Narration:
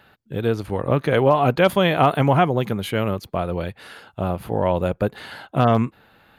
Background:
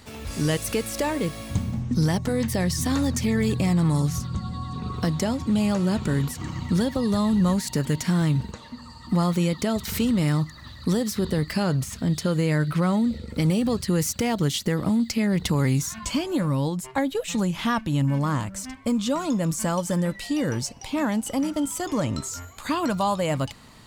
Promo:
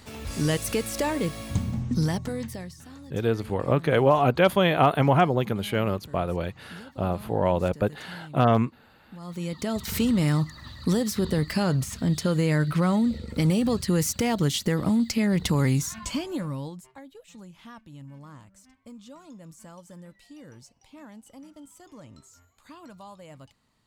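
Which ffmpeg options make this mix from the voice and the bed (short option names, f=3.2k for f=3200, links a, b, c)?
-filter_complex "[0:a]adelay=2800,volume=-3dB[a];[1:a]volume=20.5dB,afade=t=out:st=1.84:d=0.92:silence=0.0891251,afade=t=in:st=9.19:d=0.8:silence=0.0841395,afade=t=out:st=15.67:d=1.31:silence=0.0891251[b];[a][b]amix=inputs=2:normalize=0"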